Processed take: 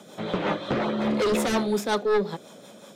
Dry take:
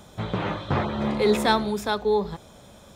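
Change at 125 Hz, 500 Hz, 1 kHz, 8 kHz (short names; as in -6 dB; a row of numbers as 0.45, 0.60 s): -5.0, -0.5, -3.0, +4.0 dB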